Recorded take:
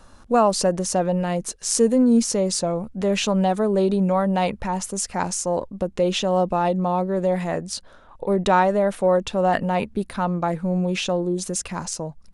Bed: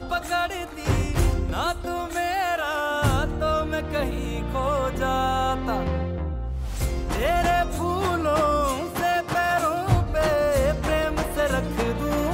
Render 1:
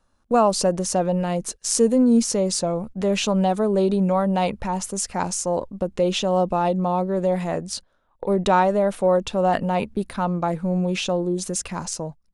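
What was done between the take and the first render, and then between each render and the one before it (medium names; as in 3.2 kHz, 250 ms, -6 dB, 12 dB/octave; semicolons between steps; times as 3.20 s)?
gate -35 dBFS, range -18 dB; dynamic bell 1.8 kHz, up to -4 dB, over -41 dBFS, Q 2.9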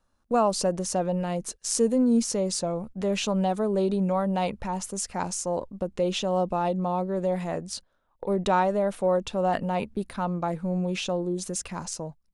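trim -5 dB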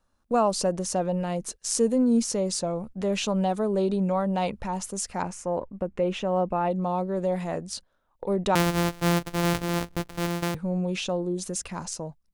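3.78–4.53 s: low-pass 9.7 kHz 24 dB/octave; 5.22–6.71 s: resonant high shelf 3 kHz -9 dB, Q 1.5; 8.55–10.55 s: sorted samples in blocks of 256 samples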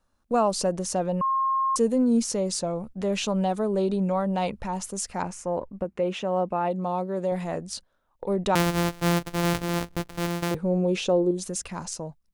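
1.21–1.76 s: bleep 1.07 kHz -21 dBFS; 5.84–7.32 s: high-pass 150 Hz 6 dB/octave; 10.51–11.31 s: peaking EQ 420 Hz +9.5 dB 1.2 oct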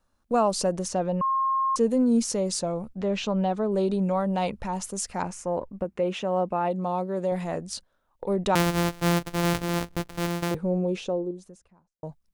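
0.88–1.91 s: distance through air 62 m; 2.97–3.72 s: distance through air 120 m; 10.29–12.03 s: studio fade out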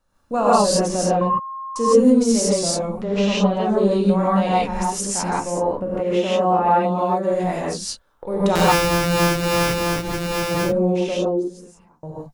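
gated-style reverb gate 190 ms rising, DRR -8 dB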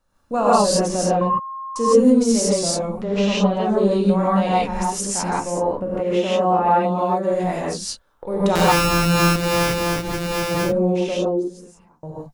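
8.73–9.36 s: flutter echo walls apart 6.1 m, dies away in 0.39 s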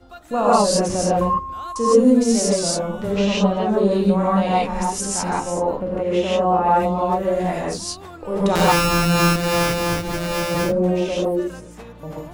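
add bed -14.5 dB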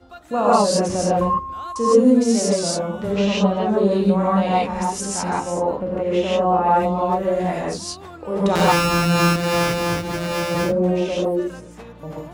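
high-pass 54 Hz; treble shelf 8.6 kHz -6 dB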